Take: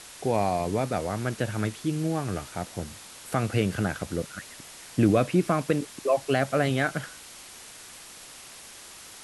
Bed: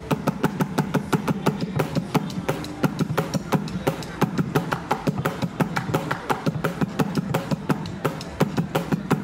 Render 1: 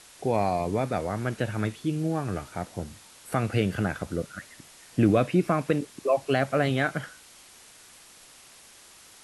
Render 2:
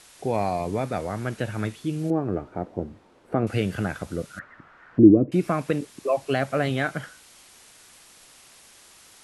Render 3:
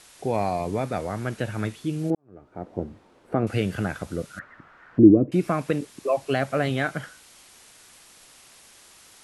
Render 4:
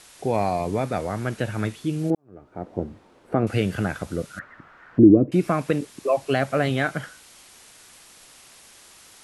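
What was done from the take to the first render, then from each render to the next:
noise print and reduce 6 dB
2.10–3.47 s: FFT filter 140 Hz 0 dB, 360 Hz +9 dB, 2.5 kHz -11 dB, 11 kHz -28 dB; 4.39–5.32 s: touch-sensitive low-pass 330–1600 Hz down, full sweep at -23.5 dBFS
2.15–2.76 s: fade in quadratic
trim +2 dB; peak limiter -3 dBFS, peak gain reduction 3 dB

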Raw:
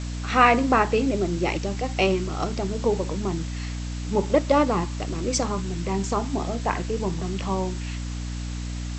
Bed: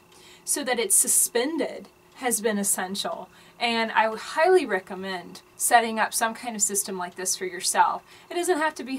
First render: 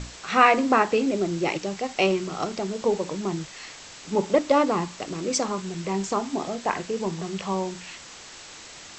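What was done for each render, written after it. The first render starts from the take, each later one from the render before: hum notches 60/120/180/240/300 Hz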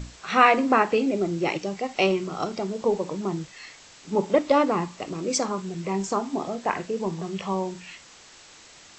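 noise print and reduce 6 dB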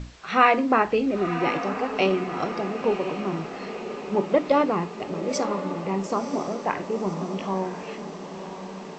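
distance through air 100 m; echo that smears into a reverb 1012 ms, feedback 57%, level -9.5 dB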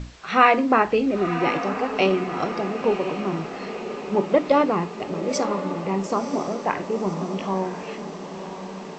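trim +2 dB

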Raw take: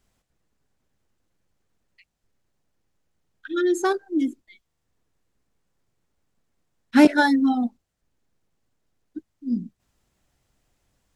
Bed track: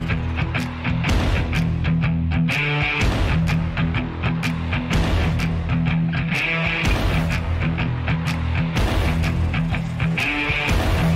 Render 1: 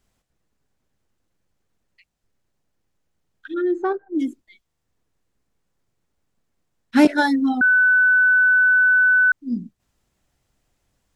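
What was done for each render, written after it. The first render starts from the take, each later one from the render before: 3.54–4.15 s: low-pass 1.4 kHz; 7.61–9.32 s: bleep 1.5 kHz -12 dBFS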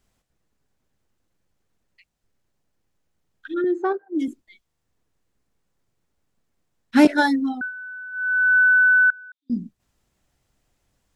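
3.64–4.28 s: high-pass 240 Hz; 7.26–8.58 s: dip -20.5 dB, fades 0.46 s; 9.10–9.50 s: band-pass filter 3.6 kHz, Q 10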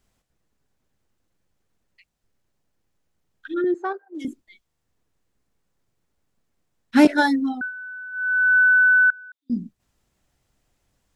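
3.74–4.25 s: Bessel high-pass 640 Hz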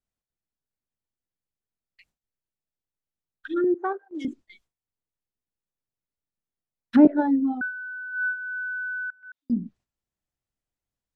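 low-pass that closes with the level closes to 610 Hz, closed at -18.5 dBFS; gate with hold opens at -46 dBFS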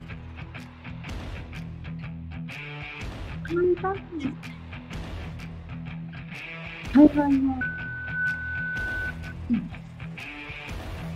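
add bed track -16.5 dB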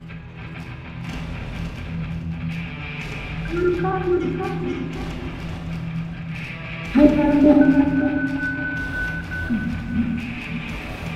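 backward echo that repeats 279 ms, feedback 52%, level 0 dB; simulated room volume 560 m³, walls mixed, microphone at 1.2 m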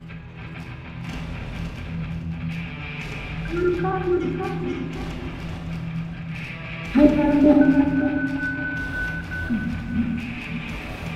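trim -1.5 dB

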